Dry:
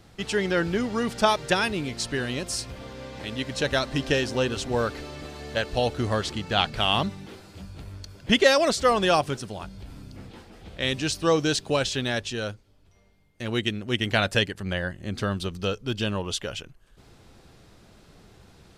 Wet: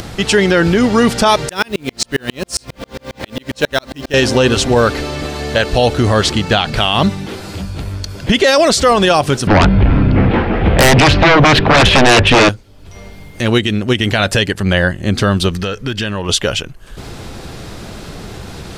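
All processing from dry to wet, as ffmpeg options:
-filter_complex "[0:a]asettb=1/sr,asplit=3[a][b][c];[a]atrim=end=1.494[d];[b]atrim=start=1.49:end=4.14,asetpts=PTS-STARTPTS,afade=t=in:d=0.004:c=qsin,afade=t=out:st=2.646:d=0.004:c=qsin,equalizer=f=95:w=3.6:g=-13,acrusher=bits=5:mode=log:mix=0:aa=0.000001,aeval=exprs='val(0)*pow(10,-39*if(lt(mod(-7.4*n/s,1),2*abs(-7.4)/1000),1-mod(-7.4*n/s,1)/(2*abs(-7.4)/1000),(mod(-7.4*n/s,1)-2*abs(-7.4)/1000)/(1-2*abs(-7.4)/1000))/20)':c=same[e];[c]atrim=start=4.136[f];[d][e]acrossfade=d=0.004:c1=hsin:c2=qsin[g];[g][f]acrossfade=d=0.004:c1=qsin:c2=hsin,asettb=1/sr,asplit=3[h][i][j];[h]atrim=end=9.474[k];[i]atrim=start=9.47:end=12.49,asetpts=PTS-STARTPTS,afade=t=in:d=0.004:c=qsin,afade=t=out:st=3.016:d=0.004:c=qsin,lowpass=f=2.5k:w=0.5412,lowpass=f=2.5k:w=1.3066,acompressor=threshold=-27dB:ratio=16:attack=3.2:release=140:knee=1:detection=peak,aeval=exprs='0.0891*sin(PI/2*4.47*val(0)/0.0891)':c=same[l];[j]atrim=start=12.486[m];[k][l]acrossfade=d=0.004:c1=hsin:c2=qsin[n];[n][m]acrossfade=d=0.004:c1=qsin:c2=hsin,asettb=1/sr,asplit=3[o][p][q];[o]atrim=end=15.534[r];[p]atrim=start=15.53:end=16.29,asetpts=PTS-STARTPTS,afade=t=in:d=0.004:c=qsin,afade=t=out:st=0.756:d=0.004:c=qsin,equalizer=f=1.8k:t=o:w=0.6:g=10,acompressor=threshold=-32dB:ratio=6:attack=3.2:release=140:knee=1:detection=peak[s];[q]atrim=start=16.286[t];[r][s]acrossfade=d=0.004:c1=hsin:c2=qsin[u];[u][t]acrossfade=d=0.004:c1=qsin:c2=hsin,acompressor=mode=upward:threshold=-37dB:ratio=2.5,alimiter=level_in=17.5dB:limit=-1dB:release=50:level=0:latency=1,volume=-1dB"

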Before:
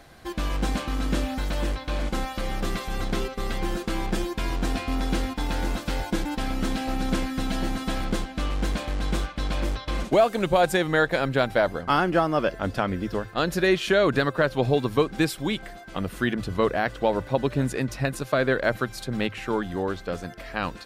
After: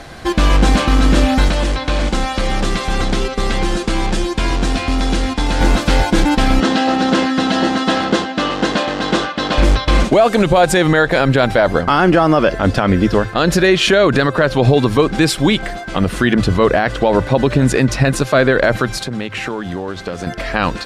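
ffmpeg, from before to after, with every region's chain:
-filter_complex "[0:a]asettb=1/sr,asplit=3[a][b][c];[a]atrim=end=1.484[d];[b]atrim=start=1.48:end=5.61,asetpts=PTS-STARTPTS,afade=t=in:d=0.004:c=qsin,afade=t=out:st=4.126:d=0.004:c=qsin,lowpass=f=11k:w=0.5412,lowpass=f=11k:w=1.3066,acrossover=split=130|2900[e][f][g];[e]acompressor=threshold=-32dB:ratio=4[h];[f]acompressor=threshold=-34dB:ratio=4[i];[g]acompressor=threshold=-42dB:ratio=4[j];[h][i][j]amix=inputs=3:normalize=0,asoftclip=type=hard:threshold=-25.5dB[k];[c]atrim=start=5.606[l];[d][k]acrossfade=d=0.004:c1=hsin:c2=qsin[m];[m][l]acrossfade=d=0.004:c1=qsin:c2=hsin,asettb=1/sr,asplit=3[n][o][p];[n]atrim=end=6.604[q];[o]atrim=start=6.6:end=9.58,asetpts=PTS-STARTPTS,afade=t=in:d=0.004:c=qsin,afade=t=out:st=2.976:d=0.004:c=qsin,highpass=240,lowpass=5.7k,bandreject=f=2.3k:w=8.2[r];[p]atrim=start=9.576[s];[q][r]acrossfade=d=0.004:c1=hsin:c2=qsin[t];[t][s]acrossfade=d=0.004:c1=qsin:c2=hsin,asettb=1/sr,asplit=3[u][v][w];[u]atrim=end=18.974[x];[v]atrim=start=18.97:end=20.27,asetpts=PTS-STARTPTS,afade=t=in:d=0.004:c=qsin,afade=t=out:st=1.296:d=0.004:c=qsin,highpass=71,acompressor=threshold=-34dB:ratio=10:attack=3.2:release=140:knee=1:detection=peak,aeval=exprs='sgn(val(0))*max(abs(val(0))-0.00119,0)':c=same[y];[w]atrim=start=20.266[z];[x][y]acrossfade=d=0.004:c1=hsin:c2=qsin[aa];[aa][z]acrossfade=d=0.004:c1=qsin:c2=hsin,lowpass=9k,alimiter=level_in=18dB:limit=-1dB:release=50:level=0:latency=1,volume=-2dB"

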